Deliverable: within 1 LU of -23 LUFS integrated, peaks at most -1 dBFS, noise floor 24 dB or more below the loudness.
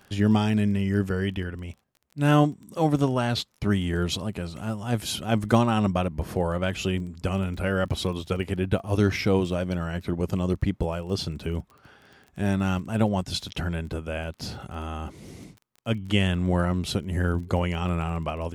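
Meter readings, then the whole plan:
ticks 23/s; loudness -26.5 LUFS; peak -7.5 dBFS; loudness target -23.0 LUFS
-> de-click; gain +3.5 dB

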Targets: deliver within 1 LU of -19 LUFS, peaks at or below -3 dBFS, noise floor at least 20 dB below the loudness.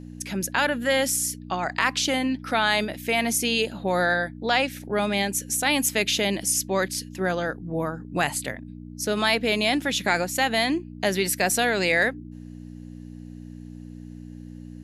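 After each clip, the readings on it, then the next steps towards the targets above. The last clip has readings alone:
hum 60 Hz; harmonics up to 300 Hz; hum level -37 dBFS; loudness -24.0 LUFS; peak -6.0 dBFS; loudness target -19.0 LUFS
-> de-hum 60 Hz, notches 5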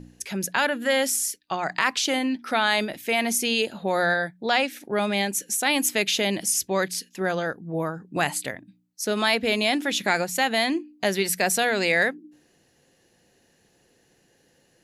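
hum none; loudness -24.0 LUFS; peak -6.0 dBFS; loudness target -19.0 LUFS
-> gain +5 dB; limiter -3 dBFS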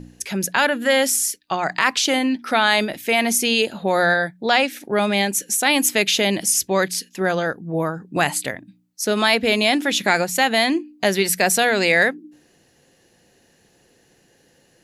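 loudness -19.0 LUFS; peak -3.0 dBFS; noise floor -59 dBFS

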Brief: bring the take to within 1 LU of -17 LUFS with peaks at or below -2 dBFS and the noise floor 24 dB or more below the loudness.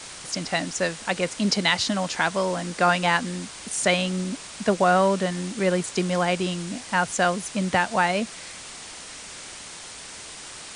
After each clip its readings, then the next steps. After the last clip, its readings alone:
noise floor -40 dBFS; noise floor target -48 dBFS; loudness -24.0 LUFS; peak -6.0 dBFS; loudness target -17.0 LUFS
-> denoiser 8 dB, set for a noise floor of -40 dBFS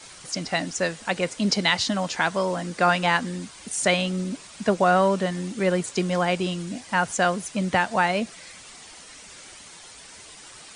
noise floor -45 dBFS; noise floor target -48 dBFS
-> denoiser 6 dB, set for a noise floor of -45 dBFS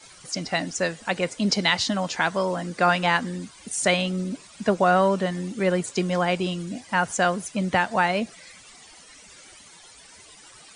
noise floor -49 dBFS; loudness -24.0 LUFS; peak -6.0 dBFS; loudness target -17.0 LUFS
-> gain +7 dB; limiter -2 dBFS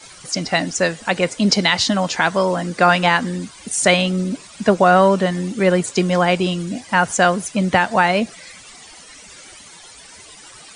loudness -17.5 LUFS; peak -2.0 dBFS; noise floor -42 dBFS

